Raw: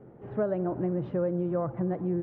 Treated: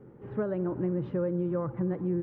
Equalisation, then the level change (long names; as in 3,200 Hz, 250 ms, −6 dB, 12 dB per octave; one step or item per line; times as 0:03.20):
parametric band 680 Hz −13 dB 0.3 octaves
0.0 dB